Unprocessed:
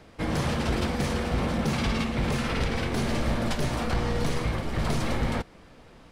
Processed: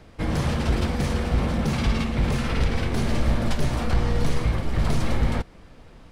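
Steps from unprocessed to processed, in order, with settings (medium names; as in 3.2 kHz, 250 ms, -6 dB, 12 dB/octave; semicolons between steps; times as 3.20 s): bass shelf 110 Hz +9 dB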